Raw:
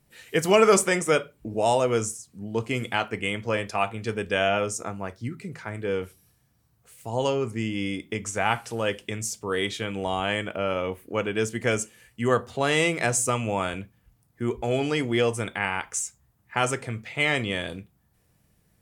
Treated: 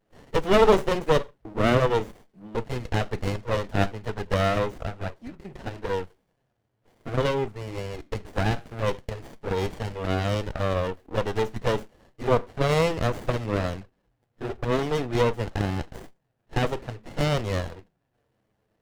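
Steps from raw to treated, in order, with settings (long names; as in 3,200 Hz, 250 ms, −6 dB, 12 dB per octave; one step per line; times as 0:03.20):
three-way crossover with the lows and the highs turned down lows −16 dB, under 400 Hz, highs −14 dB, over 3,400 Hz
flanger swept by the level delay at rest 9.4 ms, full sweep at −25.5 dBFS
windowed peak hold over 33 samples
level +8 dB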